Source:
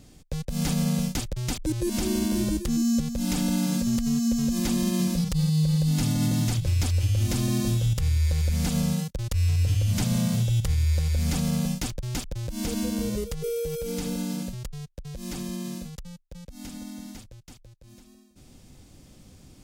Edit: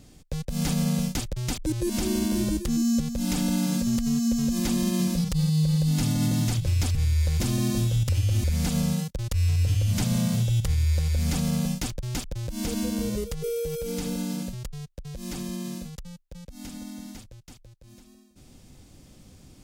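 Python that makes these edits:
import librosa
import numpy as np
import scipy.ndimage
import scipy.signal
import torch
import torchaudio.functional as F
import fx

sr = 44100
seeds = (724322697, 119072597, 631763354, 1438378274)

y = fx.edit(x, sr, fx.swap(start_s=6.95, length_s=0.35, other_s=7.99, other_length_s=0.45), tone=tone)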